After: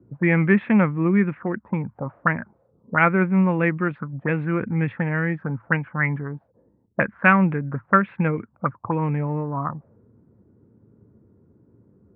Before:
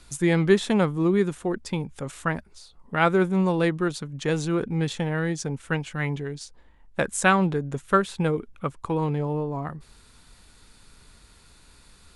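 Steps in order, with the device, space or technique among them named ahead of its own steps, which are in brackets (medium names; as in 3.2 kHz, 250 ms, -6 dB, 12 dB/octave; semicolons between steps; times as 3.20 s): 2.36–2.94 s: doubling 34 ms -3.5 dB; envelope filter bass rig (touch-sensitive low-pass 360–2400 Hz up, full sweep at -22 dBFS; cabinet simulation 90–2000 Hz, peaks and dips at 110 Hz +9 dB, 210 Hz +5 dB, 410 Hz -7 dB, 750 Hz -4 dB); trim +1.5 dB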